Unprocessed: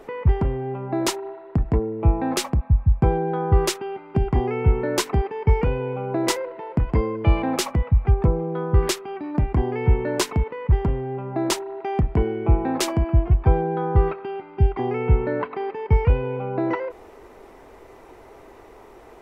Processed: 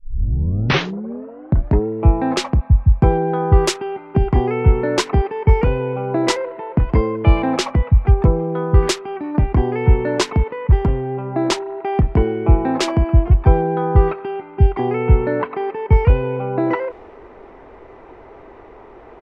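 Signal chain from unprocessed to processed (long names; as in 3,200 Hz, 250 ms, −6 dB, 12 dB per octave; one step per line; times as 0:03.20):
turntable start at the beginning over 1.87 s
low-pass that shuts in the quiet parts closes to 2,300 Hz, open at −11.5 dBFS
downsampling to 32,000 Hz
level +5 dB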